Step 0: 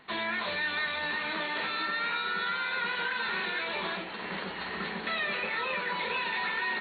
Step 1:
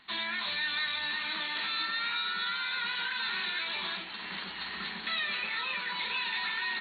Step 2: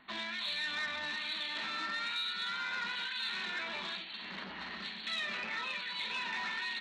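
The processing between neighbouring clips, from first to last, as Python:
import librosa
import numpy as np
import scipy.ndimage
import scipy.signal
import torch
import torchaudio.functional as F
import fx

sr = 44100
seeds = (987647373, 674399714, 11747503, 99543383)

y1 = fx.graphic_eq(x, sr, hz=(125, 500, 4000), db=(-7, -12, 8))
y1 = y1 * librosa.db_to_amplitude(-3.0)
y2 = fx.harmonic_tremolo(y1, sr, hz=1.1, depth_pct=70, crossover_hz=2400.0)
y2 = fx.small_body(y2, sr, hz=(240.0, 600.0), ring_ms=25, db=6)
y2 = fx.transformer_sat(y2, sr, knee_hz=1900.0)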